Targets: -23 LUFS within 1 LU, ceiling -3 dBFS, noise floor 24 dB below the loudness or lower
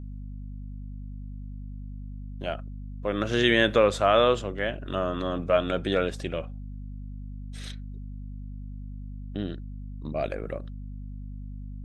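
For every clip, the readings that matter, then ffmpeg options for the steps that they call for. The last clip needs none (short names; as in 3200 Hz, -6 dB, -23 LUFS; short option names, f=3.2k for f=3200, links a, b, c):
hum 50 Hz; harmonics up to 250 Hz; hum level -35 dBFS; loudness -26.5 LUFS; peak -7.0 dBFS; loudness target -23.0 LUFS
-> -af "bandreject=f=50:t=h:w=6,bandreject=f=100:t=h:w=6,bandreject=f=150:t=h:w=6,bandreject=f=200:t=h:w=6,bandreject=f=250:t=h:w=6"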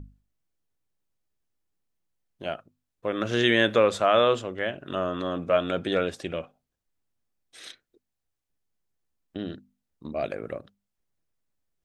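hum none; loudness -26.0 LUFS; peak -7.0 dBFS; loudness target -23.0 LUFS
-> -af "volume=3dB"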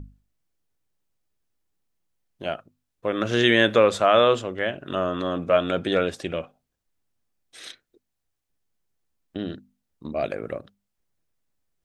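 loudness -23.0 LUFS; peak -4.0 dBFS; noise floor -80 dBFS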